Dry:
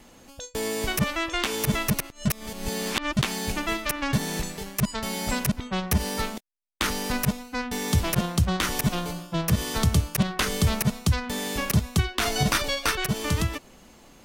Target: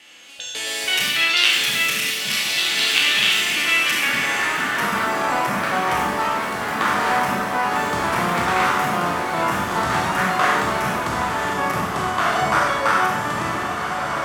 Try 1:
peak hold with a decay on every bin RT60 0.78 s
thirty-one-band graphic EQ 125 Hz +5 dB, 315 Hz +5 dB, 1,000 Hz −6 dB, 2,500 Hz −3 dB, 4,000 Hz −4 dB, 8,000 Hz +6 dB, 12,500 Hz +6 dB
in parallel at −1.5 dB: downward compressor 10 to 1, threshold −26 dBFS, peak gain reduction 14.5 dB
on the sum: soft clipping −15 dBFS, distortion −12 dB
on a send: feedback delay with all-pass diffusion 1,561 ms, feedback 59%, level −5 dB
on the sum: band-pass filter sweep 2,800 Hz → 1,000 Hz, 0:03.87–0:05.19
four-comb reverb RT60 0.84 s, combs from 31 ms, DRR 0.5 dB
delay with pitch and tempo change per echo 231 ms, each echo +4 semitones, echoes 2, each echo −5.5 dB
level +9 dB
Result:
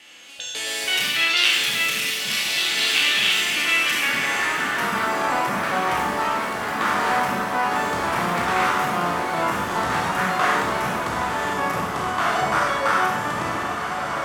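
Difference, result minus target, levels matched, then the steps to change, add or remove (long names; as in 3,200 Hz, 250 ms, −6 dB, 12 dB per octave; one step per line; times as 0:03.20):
soft clipping: distortion +16 dB
change: soft clipping −3.5 dBFS, distortion −28 dB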